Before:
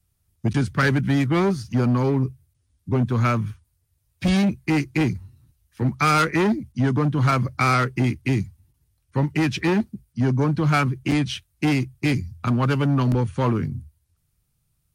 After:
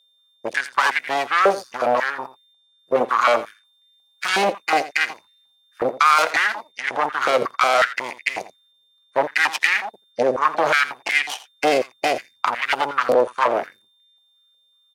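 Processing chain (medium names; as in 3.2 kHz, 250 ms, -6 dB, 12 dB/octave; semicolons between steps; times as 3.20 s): 3.00–4.25 s: comb 3.5 ms, depth 75%; peak limiter -15.5 dBFS, peak gain reduction 8 dB; Chebyshev shaper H 3 -12 dB, 4 -17 dB, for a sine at -15.5 dBFS; whistle 3.6 kHz -65 dBFS; on a send: delay 84 ms -15 dB; on the sum: step-sequenced high-pass 5.5 Hz 540–2000 Hz; trim +6.5 dB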